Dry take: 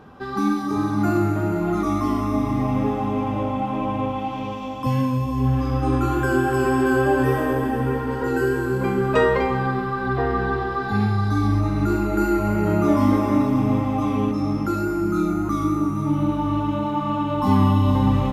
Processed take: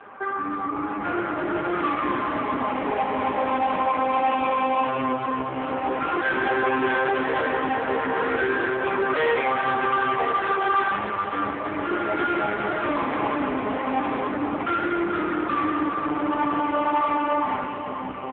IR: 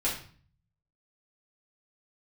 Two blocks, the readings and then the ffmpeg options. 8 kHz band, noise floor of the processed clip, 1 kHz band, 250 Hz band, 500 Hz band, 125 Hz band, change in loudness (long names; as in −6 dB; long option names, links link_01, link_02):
below −35 dB, −30 dBFS, +3.0 dB, −7.5 dB, −2.0 dB, −19.5 dB, −2.5 dB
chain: -af "aresample=8000,asoftclip=type=tanh:threshold=-15dB,aresample=44100,alimiter=level_in=2dB:limit=-24dB:level=0:latency=1:release=66,volume=-2dB,lowpass=frequency=2200:width_type=q:width=1.8,dynaudnorm=framelen=170:gausssize=13:maxgain=7.5dB,volume=24dB,asoftclip=hard,volume=-24dB,highpass=400,aecho=1:1:417:0.335,volume=7.5dB" -ar 8000 -c:a libopencore_amrnb -b:a 5900